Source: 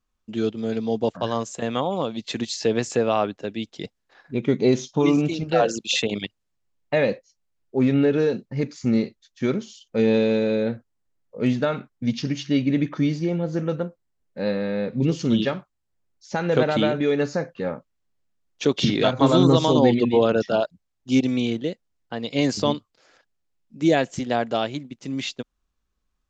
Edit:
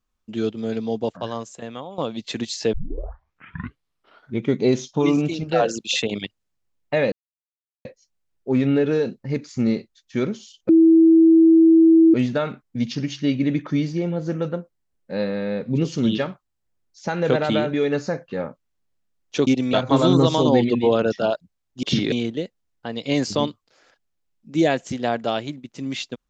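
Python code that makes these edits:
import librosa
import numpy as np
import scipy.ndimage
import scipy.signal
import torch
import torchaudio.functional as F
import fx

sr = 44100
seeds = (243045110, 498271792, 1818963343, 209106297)

y = fx.edit(x, sr, fx.fade_out_to(start_s=0.75, length_s=1.23, floor_db=-14.0),
    fx.tape_start(start_s=2.73, length_s=1.74),
    fx.insert_silence(at_s=7.12, length_s=0.73),
    fx.bleep(start_s=9.96, length_s=1.45, hz=326.0, db=-9.0),
    fx.swap(start_s=18.74, length_s=0.29, other_s=21.13, other_length_s=0.26), tone=tone)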